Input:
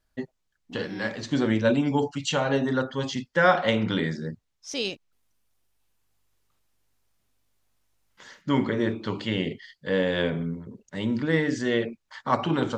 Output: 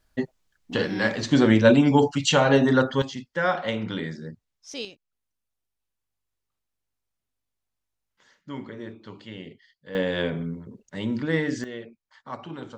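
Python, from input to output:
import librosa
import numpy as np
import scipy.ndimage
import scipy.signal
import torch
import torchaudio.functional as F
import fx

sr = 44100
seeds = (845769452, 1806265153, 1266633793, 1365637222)

y = fx.gain(x, sr, db=fx.steps((0.0, 6.0), (3.02, -4.5), (4.85, -12.5), (9.95, -1.0), (11.64, -12.5)))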